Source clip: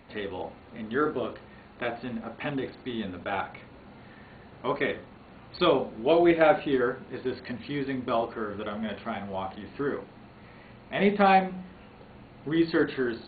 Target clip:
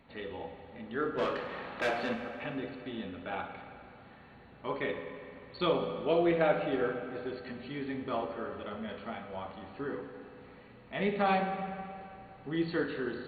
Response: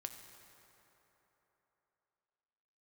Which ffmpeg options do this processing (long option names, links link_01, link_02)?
-filter_complex "[0:a]asplit=3[link_01][link_02][link_03];[link_01]afade=type=out:start_time=1.17:duration=0.02[link_04];[link_02]asplit=2[link_05][link_06];[link_06]highpass=frequency=720:poles=1,volume=24dB,asoftclip=type=tanh:threshold=-15dB[link_07];[link_05][link_07]amix=inputs=2:normalize=0,lowpass=frequency=3200:poles=1,volume=-6dB,afade=type=in:start_time=1.17:duration=0.02,afade=type=out:start_time=2.13:duration=0.02[link_08];[link_03]afade=type=in:start_time=2.13:duration=0.02[link_09];[link_04][link_08][link_09]amix=inputs=3:normalize=0[link_10];[1:a]atrim=start_sample=2205,asetrate=61740,aresample=44100[link_11];[link_10][link_11]afir=irnorm=-1:irlink=0"